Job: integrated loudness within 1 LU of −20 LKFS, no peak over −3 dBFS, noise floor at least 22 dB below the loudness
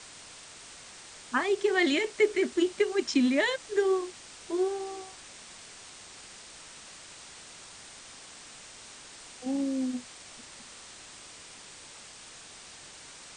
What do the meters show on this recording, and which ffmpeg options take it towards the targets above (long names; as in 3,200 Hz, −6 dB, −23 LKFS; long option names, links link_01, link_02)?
background noise floor −49 dBFS; target noise floor −51 dBFS; integrated loudness −28.5 LKFS; sample peak −13.0 dBFS; target loudness −20.0 LKFS
→ -af "afftdn=noise_reduction=6:noise_floor=-49"
-af "volume=8.5dB"